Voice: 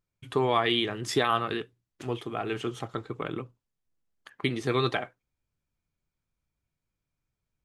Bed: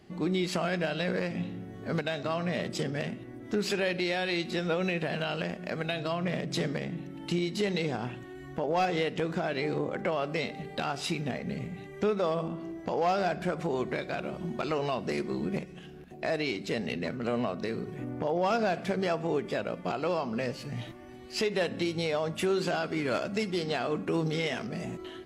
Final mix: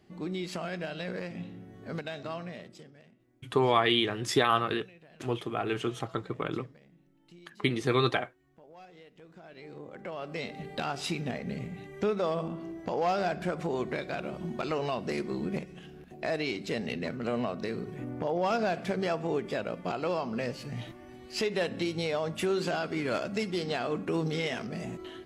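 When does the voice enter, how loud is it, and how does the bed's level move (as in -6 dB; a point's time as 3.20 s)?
3.20 s, +0.5 dB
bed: 2.35 s -6 dB
3.02 s -24.5 dB
9.13 s -24.5 dB
10.63 s -1 dB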